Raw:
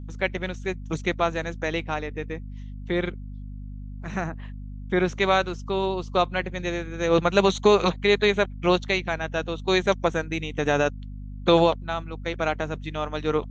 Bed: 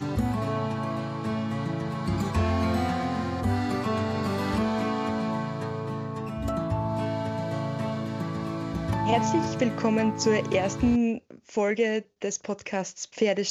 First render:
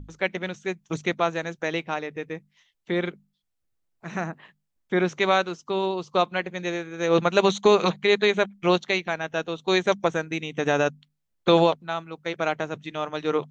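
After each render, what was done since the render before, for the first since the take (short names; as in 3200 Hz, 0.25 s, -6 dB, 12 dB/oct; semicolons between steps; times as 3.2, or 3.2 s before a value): notches 50/100/150/200/250 Hz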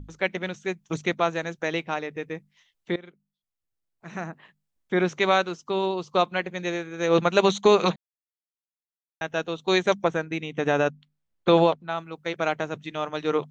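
2.96–5.07 fade in, from -21 dB; 7.96–9.21 mute; 10.03–11.98 high shelf 5200 Hz -10.5 dB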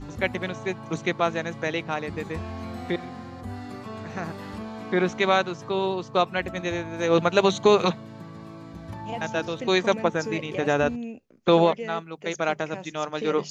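add bed -10 dB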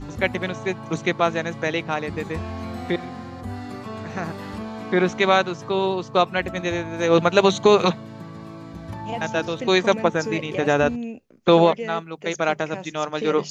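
gain +3.5 dB; limiter -3 dBFS, peak gain reduction 1.5 dB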